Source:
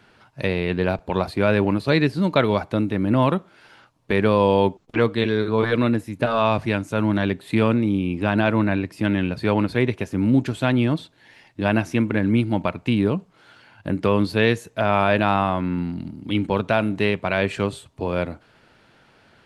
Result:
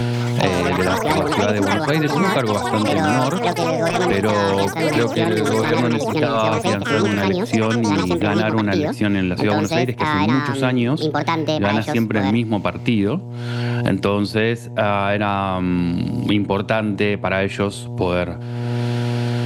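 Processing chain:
delay with pitch and tempo change per echo 134 ms, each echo +7 semitones, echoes 3
hum with harmonics 120 Hz, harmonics 8, −37 dBFS −9 dB per octave
multiband upward and downward compressor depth 100%

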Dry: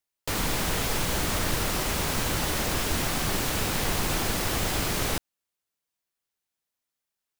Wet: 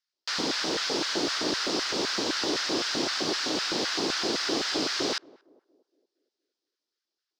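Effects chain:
drawn EQ curve 430 Hz 0 dB, 2,300 Hz −6 dB, 5,000 Hz +8 dB, 12,000 Hz −28 dB
auto-filter high-pass square 3.9 Hz 320–1,500 Hz
feedback echo with a band-pass in the loop 232 ms, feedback 49%, band-pass 400 Hz, level −22 dB

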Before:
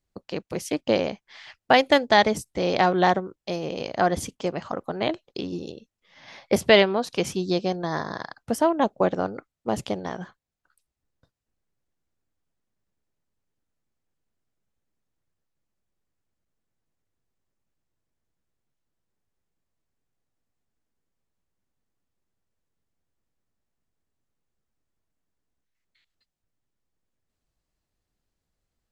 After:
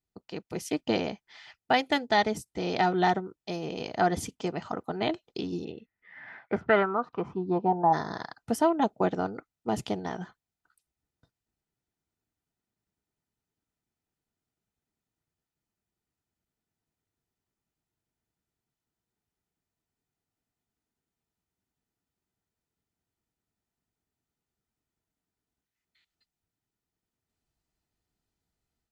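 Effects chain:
0:05.64–0:07.92: low-pass with resonance 2,200 Hz → 830 Hz, resonance Q 8
automatic gain control gain up to 6 dB
notch comb filter 550 Hz
level −7 dB

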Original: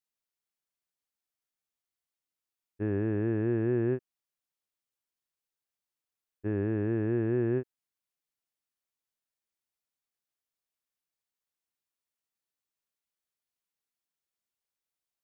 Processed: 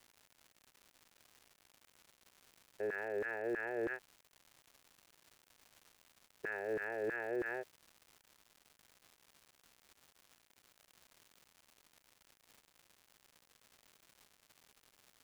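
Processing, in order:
phaser with its sweep stopped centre 1,100 Hz, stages 6
auto-filter high-pass saw down 3.1 Hz 350–1,600 Hz
brickwall limiter −36.5 dBFS, peak gain reduction 11 dB
surface crackle 260 per second −55 dBFS
level +6 dB

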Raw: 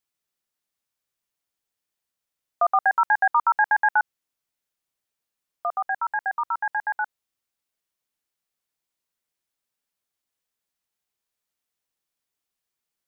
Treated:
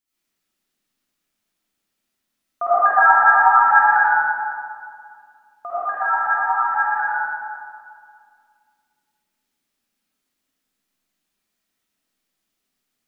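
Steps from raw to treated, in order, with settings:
octave-band graphic EQ 125/250/500/1,000 Hz −4/+9/−5/−3 dB
0:03.99–0:05.94: downward compressor, threshold −27 dBFS, peak gain reduction 7.5 dB
convolution reverb RT60 2.2 s, pre-delay 40 ms, DRR −12 dB
level −1.5 dB

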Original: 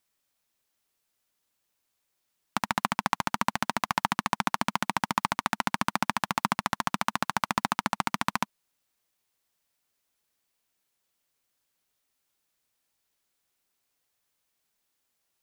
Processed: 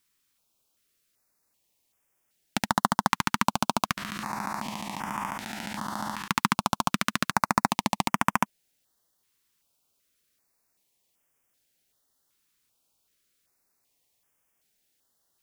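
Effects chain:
0:03.97–0:06.28: spectrum smeared in time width 93 ms
notch on a step sequencer 2.6 Hz 660–4,100 Hz
level +5 dB

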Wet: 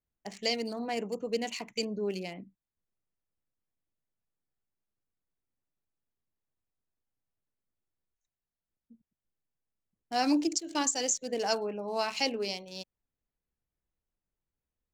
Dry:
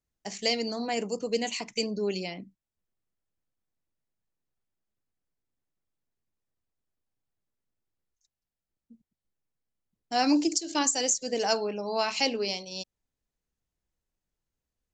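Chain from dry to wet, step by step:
adaptive Wiener filter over 9 samples
level −3 dB

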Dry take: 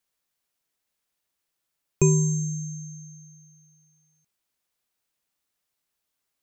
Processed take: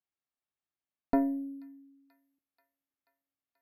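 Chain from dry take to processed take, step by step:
change of speed 1.78×
notch comb filter 490 Hz
harmonic generator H 2 −7 dB, 7 −43 dB, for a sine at −7.5 dBFS
high-frequency loss of the air 330 metres
on a send: delay with a high-pass on its return 484 ms, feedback 70%, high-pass 3,200 Hz, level −14.5 dB
on the sum: level −6 dB

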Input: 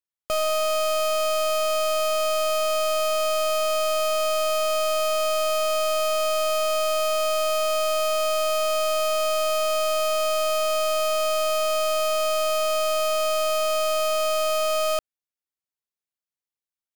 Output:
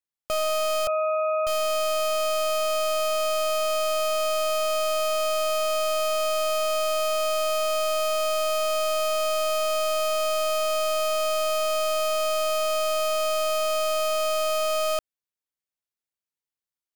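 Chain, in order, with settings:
0:00.87–0:01.47: three sine waves on the formant tracks
level −1.5 dB

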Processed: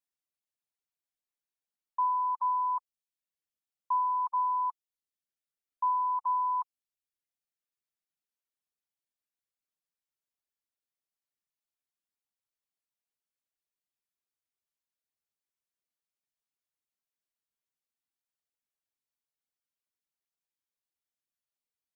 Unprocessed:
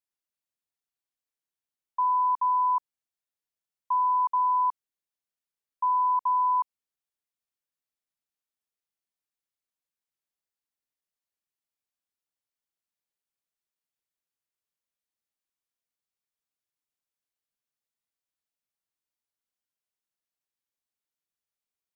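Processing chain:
reverb reduction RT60 0.85 s
level −2.5 dB

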